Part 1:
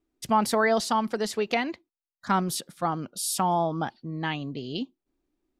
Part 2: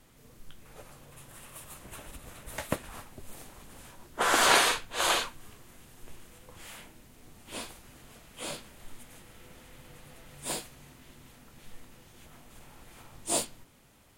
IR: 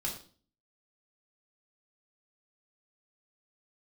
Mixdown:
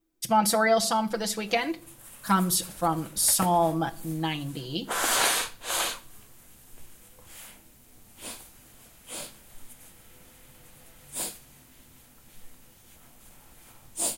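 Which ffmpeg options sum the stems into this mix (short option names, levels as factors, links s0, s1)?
-filter_complex "[0:a]aecho=1:1:6:0.8,volume=0.668,asplit=2[s0][s1];[s1]volume=0.237[s2];[1:a]dynaudnorm=f=100:g=17:m=1.78,adelay=700,volume=0.335,asplit=2[s3][s4];[s4]volume=0.188[s5];[2:a]atrim=start_sample=2205[s6];[s2][s5]amix=inputs=2:normalize=0[s7];[s7][s6]afir=irnorm=-1:irlink=0[s8];[s0][s3][s8]amix=inputs=3:normalize=0,highshelf=f=7200:g=12"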